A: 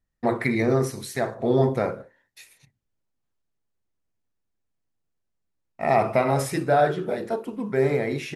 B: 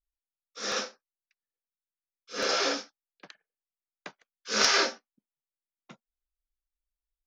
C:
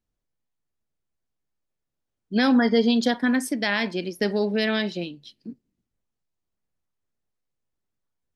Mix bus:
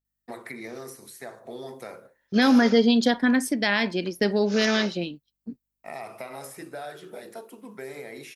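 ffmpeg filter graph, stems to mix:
-filter_complex "[0:a]aemphasis=mode=production:type=bsi,acrossover=split=150|2000[s0][s1][s2];[s0]acompressor=threshold=0.00251:ratio=4[s3];[s1]acompressor=threshold=0.0398:ratio=4[s4];[s2]acompressor=threshold=0.0141:ratio=4[s5];[s3][s4][s5]amix=inputs=3:normalize=0,adelay=50,volume=0.376[s6];[1:a]aeval=exprs='val(0)+0.000891*(sin(2*PI*50*n/s)+sin(2*PI*2*50*n/s)/2+sin(2*PI*3*50*n/s)/3+sin(2*PI*4*50*n/s)/4+sin(2*PI*5*50*n/s)/5)':c=same,volume=0.335[s7];[2:a]agate=range=0.0141:threshold=0.0112:ratio=16:detection=peak,volume=1.12,asplit=2[s8][s9];[s9]apad=whole_len=320328[s10];[s7][s10]sidechaingate=range=0.141:threshold=0.0251:ratio=16:detection=peak[s11];[s6][s11][s8]amix=inputs=3:normalize=0"

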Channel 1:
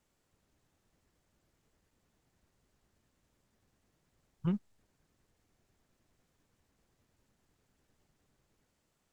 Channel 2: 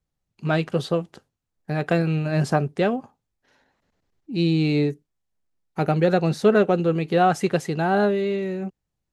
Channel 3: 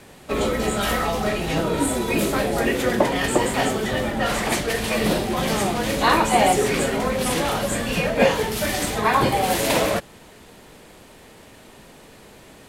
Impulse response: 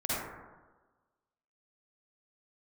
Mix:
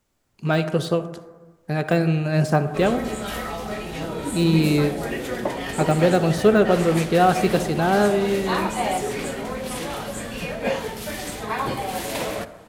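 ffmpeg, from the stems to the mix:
-filter_complex "[0:a]volume=1.33,asplit=2[s0][s1];[s1]volume=0.335[s2];[1:a]deesser=0.85,highshelf=f=7500:g=10.5,volume=1.06,asplit=2[s3][s4];[s4]volume=0.126[s5];[2:a]adelay=2450,volume=0.398,asplit=2[s6][s7];[s7]volume=0.1[s8];[3:a]atrim=start_sample=2205[s9];[s2][s5][s8]amix=inputs=3:normalize=0[s10];[s10][s9]afir=irnorm=-1:irlink=0[s11];[s0][s3][s6][s11]amix=inputs=4:normalize=0"

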